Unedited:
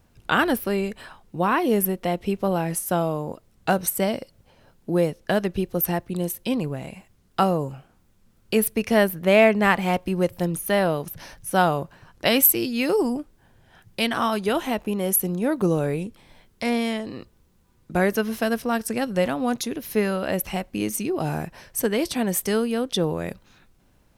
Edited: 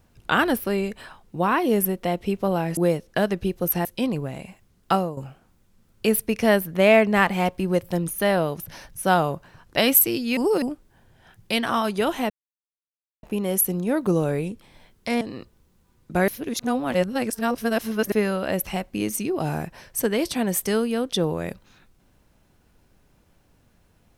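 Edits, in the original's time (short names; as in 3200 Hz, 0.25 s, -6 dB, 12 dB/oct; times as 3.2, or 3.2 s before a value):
2.77–4.9 cut
5.98–6.33 cut
7.4–7.65 fade out, to -12.5 dB
12.85–13.1 reverse
14.78 insert silence 0.93 s
16.76–17.01 cut
18.08–19.92 reverse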